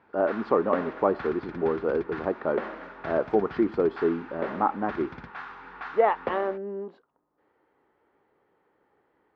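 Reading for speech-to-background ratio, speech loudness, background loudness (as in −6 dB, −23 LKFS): 12.0 dB, −27.5 LKFS, −39.5 LKFS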